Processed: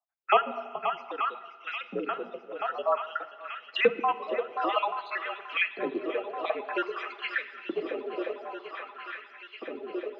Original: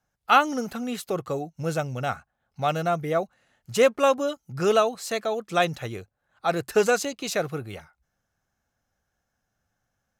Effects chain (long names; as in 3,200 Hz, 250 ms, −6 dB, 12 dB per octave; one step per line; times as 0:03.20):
time-frequency cells dropped at random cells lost 68%
noise gate with hold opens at −51 dBFS
on a send: feedback echo with a long and a short gap by turns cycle 883 ms, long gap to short 1.5 to 1, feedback 71%, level −13.5 dB
on the sum: auto-filter high-pass saw up 0.52 Hz 330–2,700 Hz
feedback delay network reverb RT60 1.3 s, low-frequency decay 0.8×, high-frequency decay 0.95×, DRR 12.5 dB
single-sideband voice off tune −64 Hz 260–3,500 Hz
multiband upward and downward compressor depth 40%